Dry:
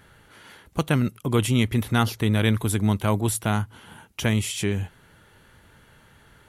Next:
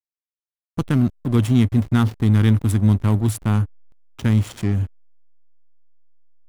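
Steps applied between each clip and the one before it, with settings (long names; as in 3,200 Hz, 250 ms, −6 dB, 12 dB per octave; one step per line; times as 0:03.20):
graphic EQ with 15 bands 100 Hz +8 dB, 250 Hz +7 dB, 630 Hz −9 dB, 2,500 Hz −5 dB
slack as between gear wheels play −23 dBFS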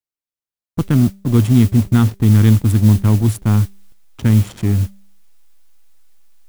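low-shelf EQ 460 Hz +5.5 dB
hum removal 196.1 Hz, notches 3
noise that follows the level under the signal 24 dB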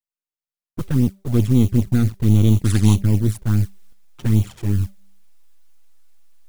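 gain on one half-wave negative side −7 dB
flanger swept by the level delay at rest 6.6 ms, full sweep at −9 dBFS
gain on a spectral selection 0:02.64–0:02.95, 750–11,000 Hz +10 dB
level −1 dB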